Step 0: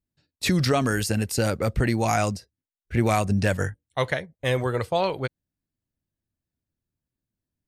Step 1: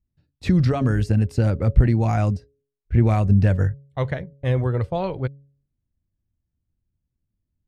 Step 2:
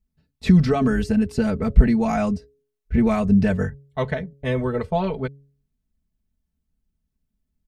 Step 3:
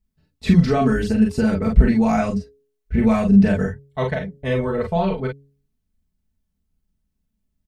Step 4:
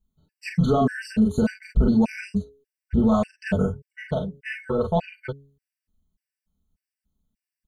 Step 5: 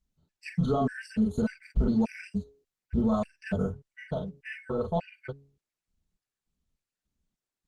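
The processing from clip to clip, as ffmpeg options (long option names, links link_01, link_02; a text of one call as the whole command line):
ffmpeg -i in.wav -af "aemphasis=mode=reproduction:type=riaa,bandreject=frequency=139.4:width_type=h:width=4,bandreject=frequency=278.8:width_type=h:width=4,bandreject=frequency=418.2:width_type=h:width=4,bandreject=frequency=557.6:width_type=h:width=4,volume=-4dB" out.wav
ffmpeg -i in.wav -af "aecho=1:1:4.6:0.95" out.wav
ffmpeg -i in.wav -af "aecho=1:1:36|46:0.562|0.562" out.wav
ffmpeg -i in.wav -af "alimiter=limit=-11dB:level=0:latency=1:release=24,afftfilt=real='re*gt(sin(2*PI*1.7*pts/sr)*(1-2*mod(floor(b*sr/1024/1500),2)),0)':imag='im*gt(sin(2*PI*1.7*pts/sr)*(1-2*mod(floor(b*sr/1024/1500),2)),0)':win_size=1024:overlap=0.75" out.wav
ffmpeg -i in.wav -af "volume=-6.5dB" -ar 48000 -c:a libopus -b:a 16k out.opus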